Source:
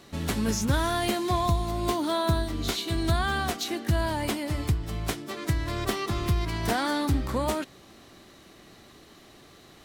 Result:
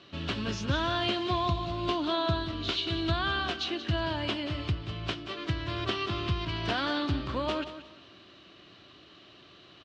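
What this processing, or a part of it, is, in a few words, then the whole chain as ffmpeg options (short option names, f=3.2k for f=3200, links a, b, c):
guitar cabinet: -af "highpass=100,equalizer=f=150:t=q:w=4:g=-5,equalizer=f=230:t=q:w=4:g=-9,equalizer=f=460:t=q:w=4:g=-7,equalizer=f=820:t=q:w=4:g=-9,equalizer=f=2k:t=q:w=4:g=-6,equalizer=f=2.9k:t=q:w=4:g=7,lowpass=f=4.4k:w=0.5412,lowpass=f=4.4k:w=1.3066,aecho=1:1:180|360|540:0.251|0.0628|0.0157"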